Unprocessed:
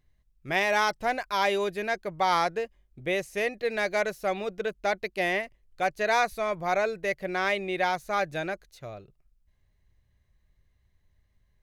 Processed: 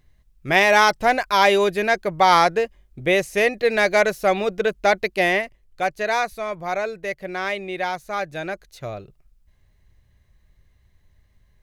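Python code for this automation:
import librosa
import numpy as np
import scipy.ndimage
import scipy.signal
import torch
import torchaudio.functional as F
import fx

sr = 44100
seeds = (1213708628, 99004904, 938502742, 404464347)

y = fx.gain(x, sr, db=fx.line((5.02, 9.5), (6.34, 1.0), (8.34, 1.0), (8.85, 9.0)))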